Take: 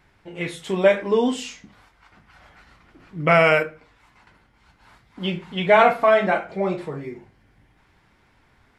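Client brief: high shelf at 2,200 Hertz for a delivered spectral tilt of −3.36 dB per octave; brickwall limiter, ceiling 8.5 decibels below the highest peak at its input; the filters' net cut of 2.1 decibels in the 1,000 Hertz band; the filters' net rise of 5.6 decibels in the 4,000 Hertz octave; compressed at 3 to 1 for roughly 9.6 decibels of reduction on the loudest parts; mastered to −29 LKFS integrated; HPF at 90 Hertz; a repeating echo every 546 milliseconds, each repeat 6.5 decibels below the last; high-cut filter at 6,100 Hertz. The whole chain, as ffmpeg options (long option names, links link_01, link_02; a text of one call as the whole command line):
ffmpeg -i in.wav -af "highpass=90,lowpass=6100,equalizer=frequency=1000:width_type=o:gain=-4.5,highshelf=frequency=2200:gain=4.5,equalizer=frequency=4000:width_type=o:gain=4.5,acompressor=threshold=-24dB:ratio=3,alimiter=limit=-19dB:level=0:latency=1,aecho=1:1:546|1092|1638|2184|2730|3276:0.473|0.222|0.105|0.0491|0.0231|0.0109,volume=2dB" out.wav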